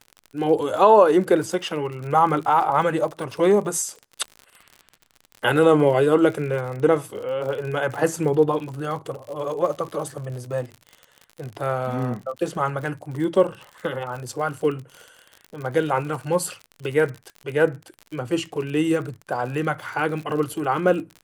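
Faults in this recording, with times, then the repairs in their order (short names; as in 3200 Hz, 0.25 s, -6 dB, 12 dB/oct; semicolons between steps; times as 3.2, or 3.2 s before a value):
crackle 58/s -31 dBFS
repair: de-click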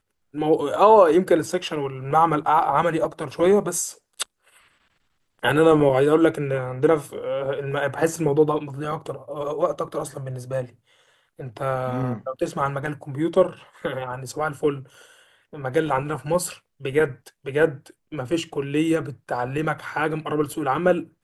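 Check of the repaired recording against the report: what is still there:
none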